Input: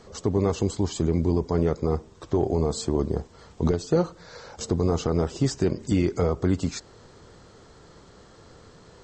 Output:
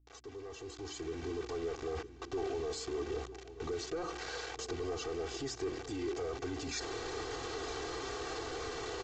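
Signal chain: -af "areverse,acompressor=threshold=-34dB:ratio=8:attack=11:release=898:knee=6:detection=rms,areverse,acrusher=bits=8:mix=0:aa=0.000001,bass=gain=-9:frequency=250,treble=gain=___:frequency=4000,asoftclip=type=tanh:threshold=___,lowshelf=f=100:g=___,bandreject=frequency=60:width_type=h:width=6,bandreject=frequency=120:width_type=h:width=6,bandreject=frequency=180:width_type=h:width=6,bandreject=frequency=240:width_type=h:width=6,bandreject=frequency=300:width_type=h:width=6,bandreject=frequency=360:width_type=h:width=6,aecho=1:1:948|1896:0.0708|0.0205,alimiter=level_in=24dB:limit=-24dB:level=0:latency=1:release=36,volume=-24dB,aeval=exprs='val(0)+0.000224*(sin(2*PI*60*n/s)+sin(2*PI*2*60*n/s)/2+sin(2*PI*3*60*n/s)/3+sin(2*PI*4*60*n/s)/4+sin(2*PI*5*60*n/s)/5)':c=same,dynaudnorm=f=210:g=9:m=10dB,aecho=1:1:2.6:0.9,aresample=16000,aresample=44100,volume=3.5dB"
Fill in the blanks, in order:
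-3, -37dB, -2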